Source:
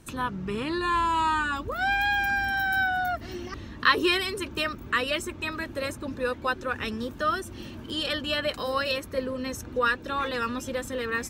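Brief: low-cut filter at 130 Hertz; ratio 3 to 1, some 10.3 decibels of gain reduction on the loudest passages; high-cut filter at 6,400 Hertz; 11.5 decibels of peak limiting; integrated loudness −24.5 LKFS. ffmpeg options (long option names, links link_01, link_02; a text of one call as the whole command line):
ffmpeg -i in.wav -af "highpass=130,lowpass=6400,acompressor=threshold=-29dB:ratio=3,volume=8.5dB,alimiter=limit=-15.5dB:level=0:latency=1" out.wav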